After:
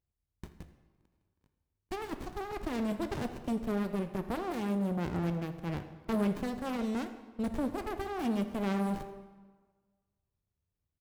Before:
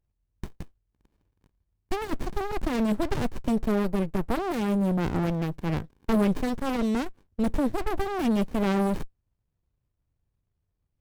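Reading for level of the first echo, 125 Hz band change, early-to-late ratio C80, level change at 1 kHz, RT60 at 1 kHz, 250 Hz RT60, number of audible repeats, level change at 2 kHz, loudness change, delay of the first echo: −18.0 dB, −7.0 dB, 11.5 dB, −6.5 dB, 1.5 s, 1.4 s, 1, −7.0 dB, −7.0 dB, 82 ms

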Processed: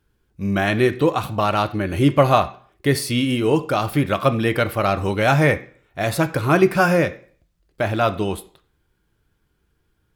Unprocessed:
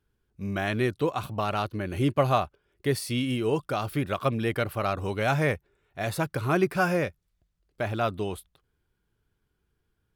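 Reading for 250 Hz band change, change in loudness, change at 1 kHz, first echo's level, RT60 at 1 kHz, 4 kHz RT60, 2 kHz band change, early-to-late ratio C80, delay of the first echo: +9.0 dB, +8.5 dB, +8.5 dB, no echo audible, 0.45 s, 0.45 s, +8.5 dB, 20.0 dB, no echo audible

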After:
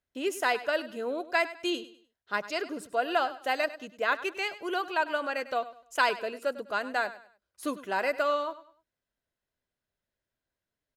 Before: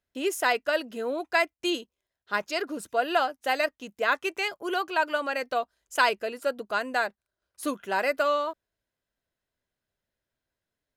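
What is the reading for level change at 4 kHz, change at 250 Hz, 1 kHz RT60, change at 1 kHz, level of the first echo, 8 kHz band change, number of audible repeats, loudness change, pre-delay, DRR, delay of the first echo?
−3.0 dB, −2.5 dB, no reverb audible, −2.5 dB, −15.5 dB, −5.0 dB, 2, −2.5 dB, no reverb audible, no reverb audible, 100 ms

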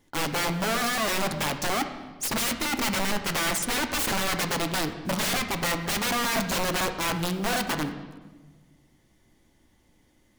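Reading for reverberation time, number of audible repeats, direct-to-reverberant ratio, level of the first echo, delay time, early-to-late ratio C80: 1.4 s, no echo audible, 6.5 dB, no echo audible, no echo audible, 11.0 dB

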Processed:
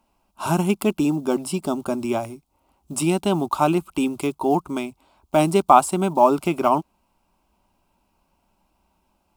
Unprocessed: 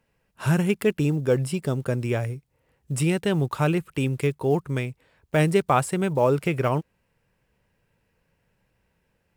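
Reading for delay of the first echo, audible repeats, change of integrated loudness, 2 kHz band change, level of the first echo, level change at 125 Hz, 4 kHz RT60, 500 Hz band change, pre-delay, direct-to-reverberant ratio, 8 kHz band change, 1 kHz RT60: no echo audible, no echo audible, +3.0 dB, −2.5 dB, no echo audible, −5.5 dB, no reverb audible, +2.0 dB, no reverb audible, no reverb audible, +5.0 dB, no reverb audible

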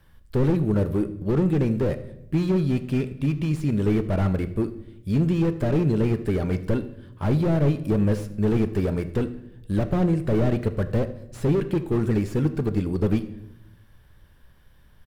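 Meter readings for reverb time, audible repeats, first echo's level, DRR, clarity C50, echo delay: 0.85 s, 1, −19.0 dB, 10.5 dB, 13.5 dB, 78 ms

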